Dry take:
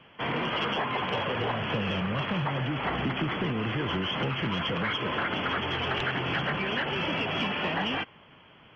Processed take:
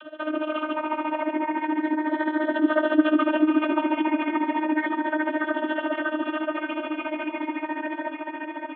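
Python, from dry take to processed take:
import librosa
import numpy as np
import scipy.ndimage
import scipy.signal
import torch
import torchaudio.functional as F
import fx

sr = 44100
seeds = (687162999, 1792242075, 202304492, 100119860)

y = fx.spec_ripple(x, sr, per_octave=0.86, drift_hz=-0.32, depth_db=17)
y = fx.doppler_pass(y, sr, speed_mps=15, closest_m=11.0, pass_at_s=3.24)
y = fx.peak_eq(y, sr, hz=1300.0, db=3.0, octaves=0.77)
y = fx.whisperise(y, sr, seeds[0])
y = fx.cabinet(y, sr, low_hz=140.0, low_slope=12, high_hz=2800.0, hz=(290.0, 420.0, 670.0, 1800.0), db=(4, 9, 5, 3))
y = fx.vocoder(y, sr, bands=32, carrier='saw', carrier_hz=308.0)
y = fx.echo_feedback(y, sr, ms=580, feedback_pct=59, wet_db=-8.0)
y = y * (1.0 - 0.85 / 2.0 + 0.85 / 2.0 * np.cos(2.0 * np.pi * 14.0 * (np.arange(len(y)) / sr)))
y = fx.env_flatten(y, sr, amount_pct=50)
y = F.gain(torch.from_numpy(y), 2.0).numpy()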